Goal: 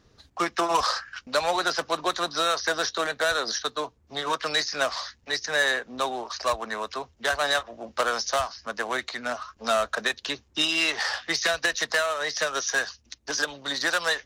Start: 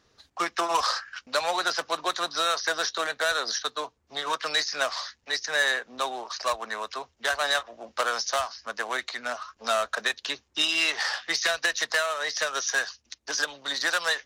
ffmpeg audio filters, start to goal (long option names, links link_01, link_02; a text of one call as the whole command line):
ffmpeg -i in.wav -af "lowshelf=frequency=350:gain=11.5" out.wav